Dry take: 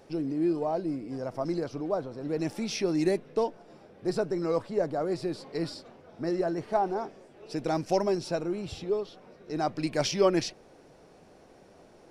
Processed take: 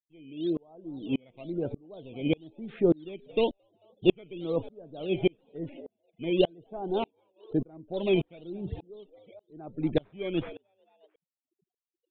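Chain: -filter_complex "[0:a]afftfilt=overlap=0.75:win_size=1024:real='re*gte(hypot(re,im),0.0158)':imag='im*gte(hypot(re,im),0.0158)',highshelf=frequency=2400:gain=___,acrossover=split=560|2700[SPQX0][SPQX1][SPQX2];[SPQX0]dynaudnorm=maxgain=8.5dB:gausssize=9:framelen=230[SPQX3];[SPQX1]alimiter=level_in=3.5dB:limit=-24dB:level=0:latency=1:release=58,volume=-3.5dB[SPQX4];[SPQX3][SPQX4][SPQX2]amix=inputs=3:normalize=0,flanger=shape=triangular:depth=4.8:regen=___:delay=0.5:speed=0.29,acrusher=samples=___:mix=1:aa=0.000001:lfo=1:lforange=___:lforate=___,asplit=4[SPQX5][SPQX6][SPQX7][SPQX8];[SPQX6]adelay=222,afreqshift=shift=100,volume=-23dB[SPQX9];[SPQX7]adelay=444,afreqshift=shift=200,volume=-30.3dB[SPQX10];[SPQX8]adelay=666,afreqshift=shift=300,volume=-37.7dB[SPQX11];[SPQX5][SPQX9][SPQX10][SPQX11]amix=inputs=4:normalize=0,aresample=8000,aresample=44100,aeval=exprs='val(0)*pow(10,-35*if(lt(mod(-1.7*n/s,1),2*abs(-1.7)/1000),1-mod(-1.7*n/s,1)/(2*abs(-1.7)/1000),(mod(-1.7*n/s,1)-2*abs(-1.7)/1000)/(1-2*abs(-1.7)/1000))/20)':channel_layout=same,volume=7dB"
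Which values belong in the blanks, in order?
-9, 88, 11, 11, 1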